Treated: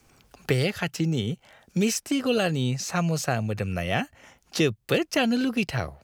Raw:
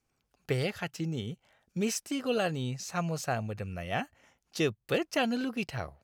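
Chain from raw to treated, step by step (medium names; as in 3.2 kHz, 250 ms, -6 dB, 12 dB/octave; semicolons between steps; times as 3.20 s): dynamic bell 910 Hz, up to -5 dB, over -41 dBFS, Q 0.77; three bands compressed up and down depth 40%; trim +8 dB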